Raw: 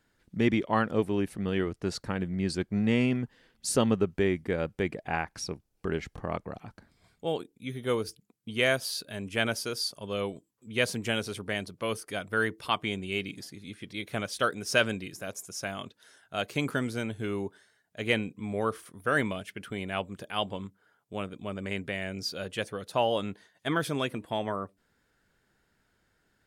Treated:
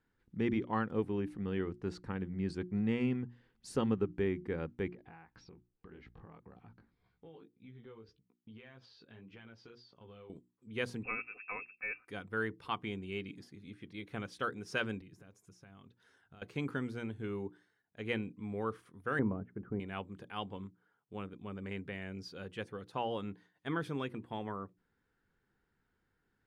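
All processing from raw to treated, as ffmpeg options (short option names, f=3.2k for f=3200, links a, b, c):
-filter_complex "[0:a]asettb=1/sr,asplit=3[a][b][c];[a]atrim=end=4.884[d];[b]atrim=start=4.88:end=10.3,asetpts=PTS-STARTPTS,afade=t=in:d=0.004:c=qsin,afade=t=out:st=5.416:d=0.004:c=qsin,lowpass=f=4.9k:w=0.5412,lowpass=f=4.9k:w=1.3066,flanger=delay=16:depth=2.4:speed=1.8,acompressor=threshold=-42dB:ratio=8:attack=3.2:release=140:knee=1:detection=peak[e];[c]atrim=start=10.296[f];[d][e]acrossfade=d=0.004:c1=hsin:c2=qsin[g];[g][f]acrossfade=d=0.004:c1=qsin:c2=hsin,asettb=1/sr,asplit=3[h][i][j];[h]atrim=end=11.034[k];[i]atrim=start=11.03:end=12.08,asetpts=PTS-STARTPTS,afade=t=in:d=0.004:c=qsin,afade=t=out:st=1.046:d=0.004:c=qsin,bandreject=f=1.9k:w=8,aecho=1:1:3.9:0.68,atrim=end_sample=46305,lowpass=f=2.4k:t=q:w=0.5098,lowpass=f=2.4k:t=q:w=0.6013,lowpass=f=2.4k:t=q:w=0.9,lowpass=f=2.4k:t=q:w=2.563,afreqshift=-2800[l];[j]atrim=start=12.076[m];[k][l]acrossfade=d=0.004:c1=hsin:c2=qsin[n];[n][m]acrossfade=d=0.004:c1=qsin:c2=hsin,asettb=1/sr,asplit=3[o][p][q];[o]atrim=end=15.014[r];[p]atrim=start=15.01:end=16.42,asetpts=PTS-STARTPTS,afade=t=in:d=0.004:c=qsin,afade=t=out:st=1.406:d=0.004:c=qsin,lowshelf=f=150:g=10,acompressor=threshold=-45dB:ratio=8:attack=3.2:release=140:knee=1:detection=peak[s];[q]atrim=start=16.416[t];[r][s]acrossfade=d=0.004:c1=hsin:c2=qsin[u];[u][t]acrossfade=d=0.004:c1=qsin:c2=hsin,asettb=1/sr,asplit=3[v][w][x];[v]atrim=end=19.194[y];[w]atrim=start=19.19:end=19.8,asetpts=PTS-STARTPTS,afade=t=in:d=0.004:c=qsin,afade=t=out:st=0.606:d=0.004:c=qsin,lowpass=f=1.5k:w=0.5412,lowpass=f=1.5k:w=1.3066,tiltshelf=f=1.1k:g=6.5[z];[x]atrim=start=19.796[aa];[y][z]acrossfade=d=0.004:c1=hsin:c2=qsin[ab];[ab][aa]acrossfade=d=0.004:c1=qsin:c2=hsin,lowpass=f=1.5k:p=1,equalizer=f=620:t=o:w=0.25:g=-13,bandreject=f=60:t=h:w=6,bandreject=f=120:t=h:w=6,bandreject=f=180:t=h:w=6,bandreject=f=240:t=h:w=6,bandreject=f=300:t=h:w=6,bandreject=f=360:t=h:w=6,volume=-5.5dB"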